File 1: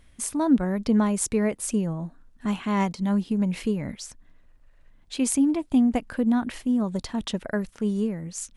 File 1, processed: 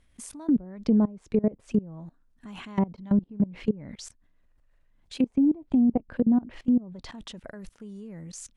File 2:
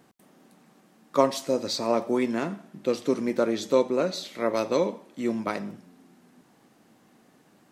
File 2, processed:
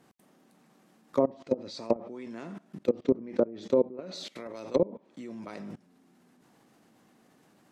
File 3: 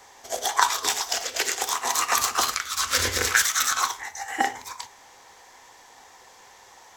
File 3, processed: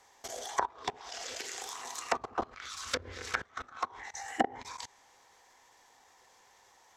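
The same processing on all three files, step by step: level held to a coarse grid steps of 22 dB; low-pass that closes with the level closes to 720 Hz, closed at -24.5 dBFS; dynamic bell 1.3 kHz, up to -6 dB, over -47 dBFS, Q 0.82; trim +3.5 dB

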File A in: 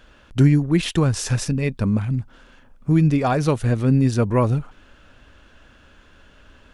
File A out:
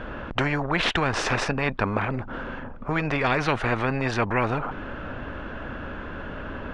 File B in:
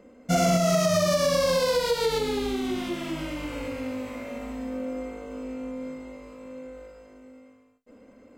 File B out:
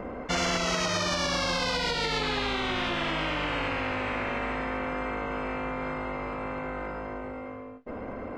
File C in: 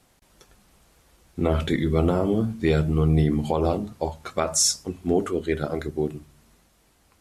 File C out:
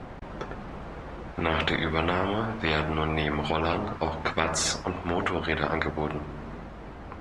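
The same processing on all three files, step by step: low-pass 1.5 kHz 12 dB/octave; spectrum-flattening compressor 4:1

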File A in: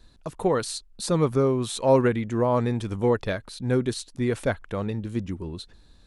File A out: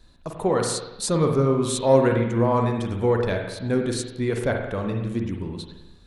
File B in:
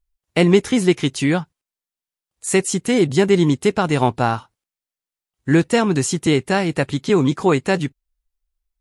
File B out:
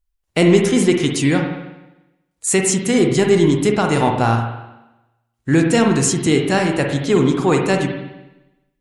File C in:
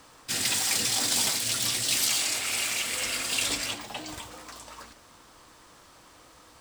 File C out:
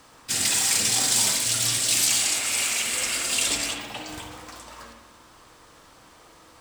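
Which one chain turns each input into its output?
in parallel at -6 dB: saturation -12 dBFS; on the sum: spring tank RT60 1 s, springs 43/52 ms, chirp 50 ms, DRR 2.5 dB; dynamic bell 7.8 kHz, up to +6 dB, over -37 dBFS, Q 1.1; trim -3 dB

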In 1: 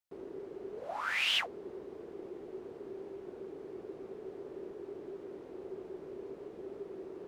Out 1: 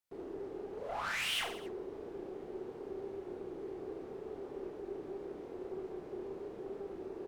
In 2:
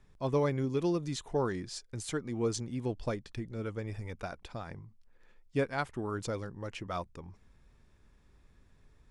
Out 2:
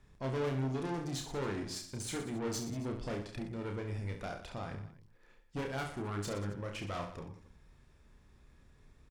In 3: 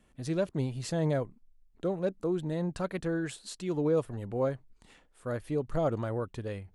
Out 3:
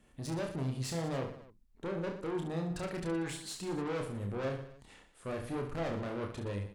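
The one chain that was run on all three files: valve stage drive 36 dB, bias 0.4; reverse bouncing-ball echo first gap 30 ms, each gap 1.3×, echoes 5; trim +1 dB

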